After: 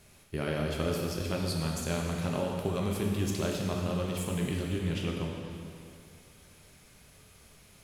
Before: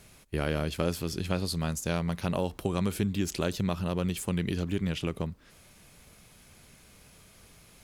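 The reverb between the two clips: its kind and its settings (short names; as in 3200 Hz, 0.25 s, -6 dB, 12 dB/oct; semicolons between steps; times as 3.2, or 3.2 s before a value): plate-style reverb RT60 2.5 s, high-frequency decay 0.95×, DRR -1 dB; gain -4.5 dB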